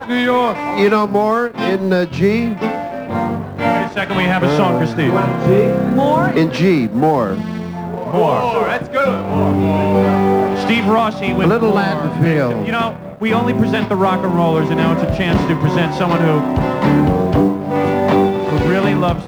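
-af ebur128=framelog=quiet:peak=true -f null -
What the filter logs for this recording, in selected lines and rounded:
Integrated loudness:
  I:         -15.4 LUFS
  Threshold: -25.4 LUFS
Loudness range:
  LRA:         2.2 LU
  Threshold: -35.5 LUFS
  LRA low:   -16.7 LUFS
  LRA high:  -14.5 LUFS
True peak:
  Peak:       -1.2 dBFS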